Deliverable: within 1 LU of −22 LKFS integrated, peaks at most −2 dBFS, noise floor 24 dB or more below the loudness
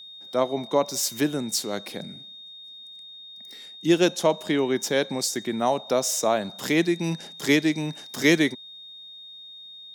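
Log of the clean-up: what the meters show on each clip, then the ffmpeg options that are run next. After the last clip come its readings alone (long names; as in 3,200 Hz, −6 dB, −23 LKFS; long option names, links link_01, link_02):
interfering tone 3,700 Hz; level of the tone −41 dBFS; integrated loudness −24.5 LKFS; sample peak −7.0 dBFS; target loudness −22.0 LKFS
→ -af "bandreject=frequency=3700:width=30"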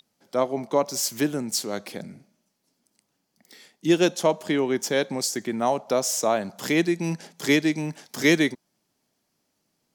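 interfering tone none found; integrated loudness −24.5 LKFS; sample peak −7.5 dBFS; target loudness −22.0 LKFS
→ -af "volume=2.5dB"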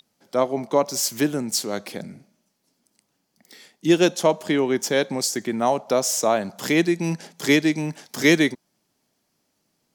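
integrated loudness −22.0 LKFS; sample peak −5.0 dBFS; background noise floor −73 dBFS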